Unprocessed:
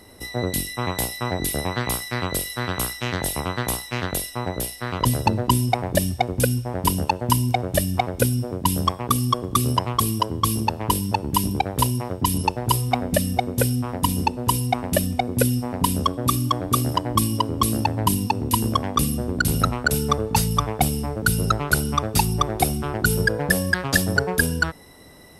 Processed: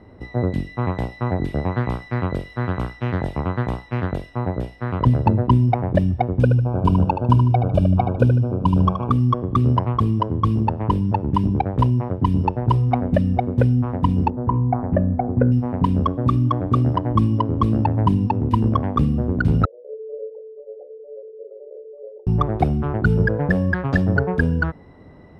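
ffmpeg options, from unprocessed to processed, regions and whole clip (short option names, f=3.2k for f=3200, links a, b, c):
-filter_complex "[0:a]asettb=1/sr,asplit=3[a][b][c];[a]atrim=end=6.424[d];[b]atrim=start=6.42:end=9.11,asetpts=PTS-STARTPTS,afade=t=in:d=0.004:c=qsin,afade=t=out:st=2.686:d=0.004:c=qsin,asuperstop=centerf=1900:order=20:qfactor=3.2,aecho=1:1:75|150|225|300:0.398|0.135|0.046|0.0156,atrim=end_sample=118629[e];[c]atrim=start=9.106[f];[d][e]acrossfade=d=0.004:c1=hsin:c2=qsin[g];[g][f]acrossfade=d=0.004:c1=qsin:c2=hsin,asettb=1/sr,asplit=3[h][i][j];[h]atrim=end=14.304[k];[i]atrim=start=14.3:end=15.52,asetpts=PTS-STARTPTS,afade=t=in:d=0.004:c=qsin,afade=t=out:st=1.216:d=0.004:c=qsin,lowpass=f=1.7k:w=0.5412,lowpass=f=1.7k:w=1.3066,bandreject=f=59.21:t=h:w=4,bandreject=f=118.42:t=h:w=4,bandreject=f=177.63:t=h:w=4,bandreject=f=236.84:t=h:w=4,bandreject=f=296.05:t=h:w=4,bandreject=f=355.26:t=h:w=4,bandreject=f=414.47:t=h:w=4,bandreject=f=473.68:t=h:w=4,bandreject=f=532.89:t=h:w=4,bandreject=f=592.1:t=h:w=4,bandreject=f=651.31:t=h:w=4,bandreject=f=710.52:t=h:w=4,bandreject=f=769.73:t=h:w=4,bandreject=f=828.94:t=h:w=4,bandreject=f=888.15:t=h:w=4,bandreject=f=947.36:t=h:w=4,bandreject=f=1.00657k:t=h:w=4,bandreject=f=1.06578k:t=h:w=4,bandreject=f=1.12499k:t=h:w=4,bandreject=f=1.1842k:t=h:w=4,bandreject=f=1.24341k:t=h:w=4,bandreject=f=1.30262k:t=h:w=4,bandreject=f=1.36183k:t=h:w=4,bandreject=f=1.42104k:t=h:w=4,bandreject=f=1.48025k:t=h:w=4,bandreject=f=1.53946k:t=h:w=4,bandreject=f=1.59867k:t=h:w=4,bandreject=f=1.65788k:t=h:w=4,bandreject=f=1.71709k:t=h:w=4[l];[j]atrim=start=15.516[m];[k][l]acrossfade=d=0.004:c1=hsin:c2=qsin[n];[n][m]acrossfade=d=0.004:c1=qsin:c2=hsin,asettb=1/sr,asplit=3[o][p][q];[o]atrim=end=19.654[r];[p]atrim=start=19.65:end=22.27,asetpts=PTS-STARTPTS,afade=t=in:d=0.004:c=qsin,afade=t=out:st=2.616:d=0.004:c=qsin,flanger=delay=1.8:depth=6.7:regen=-63:speed=1.3:shape=sinusoidal,asuperpass=centerf=490:order=8:qfactor=2.9[s];[q]atrim=start=22.266[t];[r][s]acrossfade=d=0.004:c1=hsin:c2=qsin[u];[u][t]acrossfade=d=0.004:c1=qsin:c2=hsin,lowpass=1.6k,equalizer=f=110:w=0.42:g=6.5"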